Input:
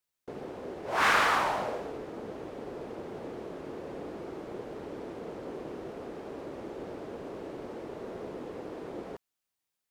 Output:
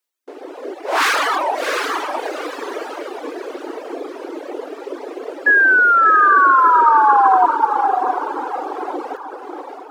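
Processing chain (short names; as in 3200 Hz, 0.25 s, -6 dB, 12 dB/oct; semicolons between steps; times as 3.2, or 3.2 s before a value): reverb removal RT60 0.59 s; hard clip -27 dBFS, distortion -9 dB; AGC gain up to 9.5 dB; painted sound fall, 5.46–7.46, 720–1700 Hz -16 dBFS; diffused feedback echo 0.681 s, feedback 46%, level -3.5 dB; reverb removal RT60 1.7 s; brick-wall FIR high-pass 260 Hz; gain +5 dB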